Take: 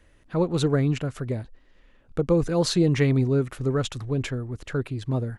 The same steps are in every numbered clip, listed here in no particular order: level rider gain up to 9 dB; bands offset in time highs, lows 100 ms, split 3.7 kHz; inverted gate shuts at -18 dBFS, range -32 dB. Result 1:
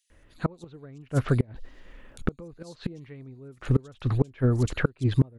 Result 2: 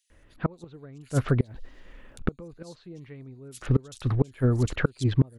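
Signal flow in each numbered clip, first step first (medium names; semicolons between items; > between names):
bands offset in time > inverted gate > level rider; inverted gate > bands offset in time > level rider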